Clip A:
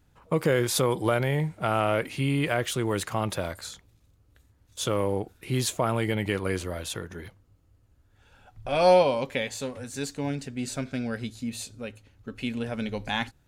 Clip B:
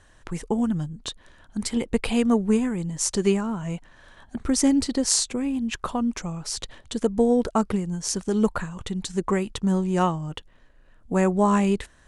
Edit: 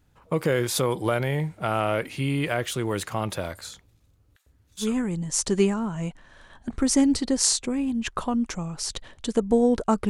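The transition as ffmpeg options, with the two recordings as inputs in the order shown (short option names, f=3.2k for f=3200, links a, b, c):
-filter_complex "[0:a]asettb=1/sr,asplit=3[a][b][c];[a]atrim=end=4.364[d];[b]atrim=start=4.36:end=4.97,asetpts=PTS-STARTPTS,afade=t=in:d=0.004:c=qsin,afade=t=out:st=0.606:d=0.004:c=qsin,acrossover=split=810[e][f];[e]adelay=100[g];[g][f]amix=inputs=2:normalize=0,atrim=end_sample=26901[h];[c]atrim=start=4.966[i];[d][h]acrossfade=d=0.004:c1=hsin:c2=qsin[j];[j][i]acrossfade=d=0.004:c1=qsin:c2=hsin,apad=whole_dur=10.09,atrim=end=10.09,atrim=end=4.97,asetpts=PTS-STARTPTS[k];[1:a]atrim=start=2.44:end=7.76,asetpts=PTS-STARTPTS[l];[k][l]acrossfade=d=0.2:c1=tri:c2=tri"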